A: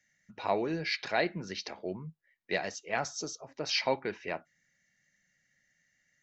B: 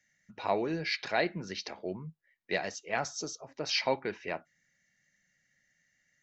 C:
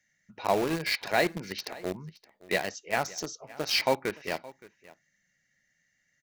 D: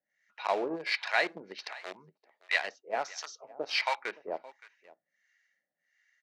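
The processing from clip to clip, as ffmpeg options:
-af anull
-filter_complex "[0:a]asplit=2[a][b];[b]acrusher=bits=4:mix=0:aa=0.000001,volume=-5dB[c];[a][c]amix=inputs=2:normalize=0,aecho=1:1:569:0.0944"
-filter_complex "[0:a]acrossover=split=810[a][b];[a]aeval=exprs='val(0)*(1-1/2+1/2*cos(2*PI*1.4*n/s))':c=same[c];[b]aeval=exprs='val(0)*(1-1/2-1/2*cos(2*PI*1.4*n/s))':c=same[d];[c][d]amix=inputs=2:normalize=0,highpass=530,lowpass=4k,volume=4dB"

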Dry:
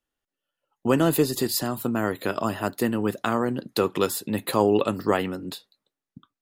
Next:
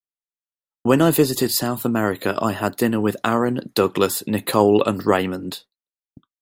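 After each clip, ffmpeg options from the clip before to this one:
-af "agate=range=-33dB:threshold=-40dB:ratio=3:detection=peak,volume=5dB"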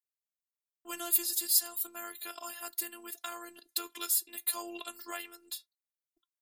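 -af "aderivative,afftfilt=real='hypot(re,im)*cos(PI*b)':imag='0':win_size=512:overlap=0.75,volume=-1.5dB"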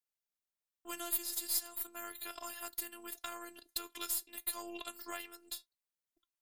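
-af "aeval=exprs='if(lt(val(0),0),0.708*val(0),val(0))':c=same,acompressor=threshold=-41dB:ratio=1.5"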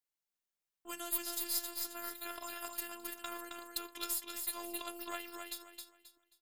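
-af "aecho=1:1:267|534|801|1068:0.562|0.163|0.0473|0.0137,volume=-1dB"

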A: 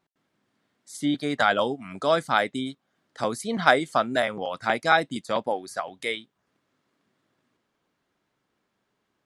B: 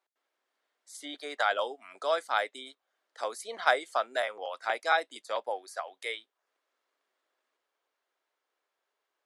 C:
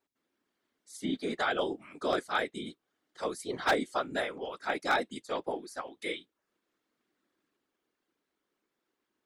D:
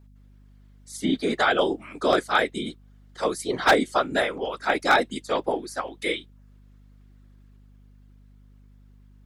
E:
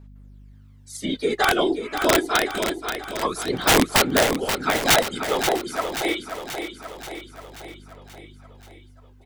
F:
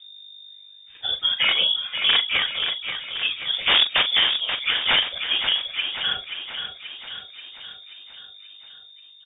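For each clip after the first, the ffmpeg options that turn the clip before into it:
-af "highpass=f=450:w=0.5412,highpass=f=450:w=1.3066,volume=-6dB"
-af "afftfilt=real='hypot(re,im)*cos(2*PI*random(0))':imag='hypot(re,im)*sin(2*PI*random(1))':win_size=512:overlap=0.75,lowshelf=f=420:t=q:w=1.5:g=12.5,aeval=exprs='0.0708*(abs(mod(val(0)/0.0708+3,4)-2)-1)':c=same,volume=5dB"
-af "aeval=exprs='val(0)+0.001*(sin(2*PI*50*n/s)+sin(2*PI*2*50*n/s)/2+sin(2*PI*3*50*n/s)/3+sin(2*PI*4*50*n/s)/4+sin(2*PI*5*50*n/s)/5)':c=same,volume=9dB"
-filter_complex "[0:a]aphaser=in_gain=1:out_gain=1:delay=3.1:decay=0.55:speed=0.25:type=sinusoidal,aeval=exprs='(mod(2.99*val(0)+1,2)-1)/2.99':c=same,asplit=2[a][b];[b]aecho=0:1:532|1064|1596|2128|2660|3192|3724:0.398|0.231|0.134|0.0777|0.0451|0.0261|0.0152[c];[a][c]amix=inputs=2:normalize=0"
-filter_complex "[0:a]asplit=2[a][b];[b]acrusher=samples=14:mix=1:aa=0.000001,volume=-11.5dB[c];[a][c]amix=inputs=2:normalize=0,asplit=2[d][e];[e]adelay=42,volume=-11dB[f];[d][f]amix=inputs=2:normalize=0,lowpass=f=3.1k:t=q:w=0.5098,lowpass=f=3.1k:t=q:w=0.6013,lowpass=f=3.1k:t=q:w=0.9,lowpass=f=3.1k:t=q:w=2.563,afreqshift=-3700,volume=-2dB"

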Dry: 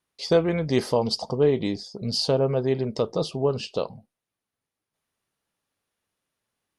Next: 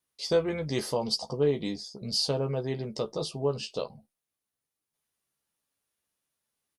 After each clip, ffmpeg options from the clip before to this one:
-filter_complex "[0:a]highshelf=f=5.1k:g=10.5,asplit=2[a][b];[b]adelay=14,volume=-6.5dB[c];[a][c]amix=inputs=2:normalize=0,volume=-7.5dB"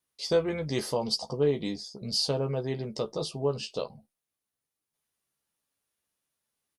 -af anull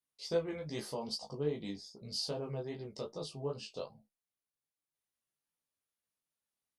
-af "flanger=delay=17.5:depth=4.3:speed=2.5,volume=-6.5dB"

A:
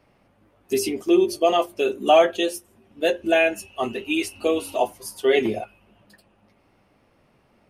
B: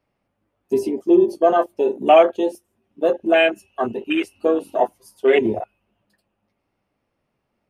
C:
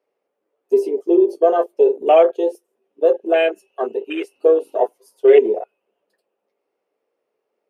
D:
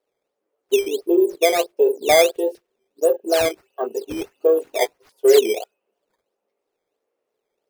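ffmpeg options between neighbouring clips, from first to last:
-af "afwtdn=0.0447,volume=3.5dB"
-af "highpass=f=440:t=q:w=4.9,volume=-5.5dB"
-af "acrusher=samples=9:mix=1:aa=0.000001:lfo=1:lforange=14.4:lforate=1.5,volume=-2.5dB"

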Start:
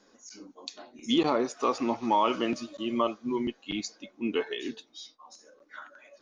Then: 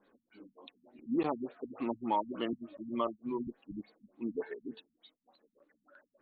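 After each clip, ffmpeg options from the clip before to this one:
-af "afftfilt=real='re*lt(b*sr/1024,230*pow(4600/230,0.5+0.5*sin(2*PI*3.4*pts/sr)))':imag='im*lt(b*sr/1024,230*pow(4600/230,0.5+0.5*sin(2*PI*3.4*pts/sr)))':win_size=1024:overlap=0.75,volume=-6dB"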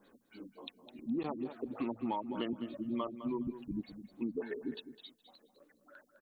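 -af "bass=f=250:g=5,treble=f=4k:g=10,acompressor=threshold=-36dB:ratio=6,aecho=1:1:208|416:0.251|0.0427,volume=3dB"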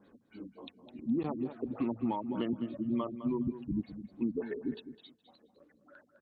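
-af "highpass=72,aemphasis=mode=reproduction:type=bsi"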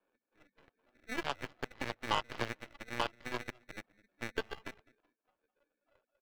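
-filter_complex "[0:a]acrusher=samples=22:mix=1:aa=0.000001,acrossover=split=390 3000:gain=0.1 1 0.0891[a][b][c];[a][b][c]amix=inputs=3:normalize=0,aeval=exprs='0.0708*(cos(1*acos(clip(val(0)/0.0708,-1,1)))-cos(1*PI/2))+0.00112*(cos(3*acos(clip(val(0)/0.0708,-1,1)))-cos(3*PI/2))+0.000708*(cos(5*acos(clip(val(0)/0.0708,-1,1)))-cos(5*PI/2))+0.00708*(cos(6*acos(clip(val(0)/0.0708,-1,1)))-cos(6*PI/2))+0.0112*(cos(7*acos(clip(val(0)/0.0708,-1,1)))-cos(7*PI/2))':c=same,volume=6dB"

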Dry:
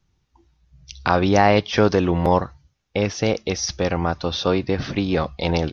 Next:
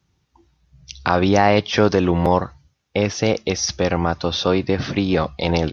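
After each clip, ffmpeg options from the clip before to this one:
-filter_complex "[0:a]asplit=2[a][b];[b]alimiter=limit=-11.5dB:level=0:latency=1:release=113,volume=-1dB[c];[a][c]amix=inputs=2:normalize=0,highpass=69,volume=-2.5dB"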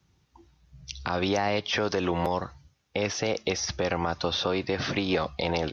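-filter_complex "[0:a]acrossover=split=420|2900[a][b][c];[a]acompressor=threshold=-30dB:ratio=4[d];[b]acompressor=threshold=-24dB:ratio=4[e];[c]acompressor=threshold=-33dB:ratio=4[f];[d][e][f]amix=inputs=3:normalize=0,alimiter=limit=-15.5dB:level=0:latency=1:release=101"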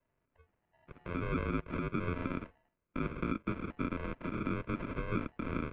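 -af "acrusher=samples=42:mix=1:aa=0.000001,highpass=f=280:t=q:w=0.5412,highpass=f=280:t=q:w=1.307,lowpass=f=2.9k:t=q:w=0.5176,lowpass=f=2.9k:t=q:w=0.7071,lowpass=f=2.9k:t=q:w=1.932,afreqshift=-260,volume=-6dB"

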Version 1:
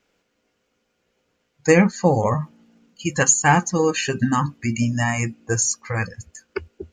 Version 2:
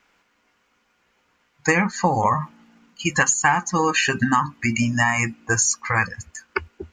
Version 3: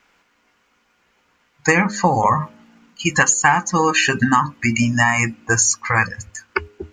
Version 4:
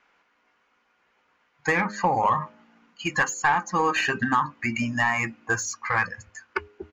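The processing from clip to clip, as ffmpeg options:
-af "equalizer=f=125:t=o:w=1:g=-4,equalizer=f=500:t=o:w=1:g=-7,equalizer=f=1k:t=o:w=1:g=9,equalizer=f=2k:t=o:w=1:g=5,acompressor=threshold=-18dB:ratio=6,volume=3dB"
-af "bandreject=f=103.6:t=h:w=4,bandreject=f=207.2:t=h:w=4,bandreject=f=310.8:t=h:w=4,bandreject=f=414.4:t=h:w=4,bandreject=f=518:t=h:w=4,bandreject=f=621.6:t=h:w=4,volume=3.5dB"
-filter_complex "[0:a]aresample=16000,aresample=44100,asplit=2[a][b];[b]highpass=f=720:p=1,volume=12dB,asoftclip=type=tanh:threshold=-1dB[c];[a][c]amix=inputs=2:normalize=0,lowpass=f=1.5k:p=1,volume=-6dB,volume=-8dB"

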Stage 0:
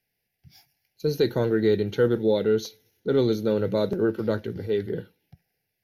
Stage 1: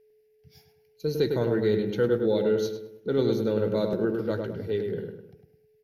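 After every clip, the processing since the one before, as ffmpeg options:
-filter_complex "[0:a]aeval=exprs='val(0)+0.00178*sin(2*PI*430*n/s)':c=same,asplit=2[a][b];[b]adelay=103,lowpass=f=1.8k:p=1,volume=-4dB,asplit=2[c][d];[d]adelay=103,lowpass=f=1.8k:p=1,volume=0.46,asplit=2[e][f];[f]adelay=103,lowpass=f=1.8k:p=1,volume=0.46,asplit=2[g][h];[h]adelay=103,lowpass=f=1.8k:p=1,volume=0.46,asplit=2[i][j];[j]adelay=103,lowpass=f=1.8k:p=1,volume=0.46,asplit=2[k][l];[l]adelay=103,lowpass=f=1.8k:p=1,volume=0.46[m];[c][e][g][i][k][m]amix=inputs=6:normalize=0[n];[a][n]amix=inputs=2:normalize=0,volume=-3.5dB"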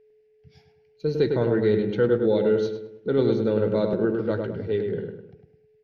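-af "lowpass=3.4k,volume=3dB"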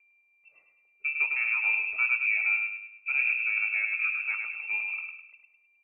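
-af "lowpass=f=2.4k:t=q:w=0.5098,lowpass=f=2.4k:t=q:w=0.6013,lowpass=f=2.4k:t=q:w=0.9,lowpass=f=2.4k:t=q:w=2.563,afreqshift=-2800,volume=-6dB"

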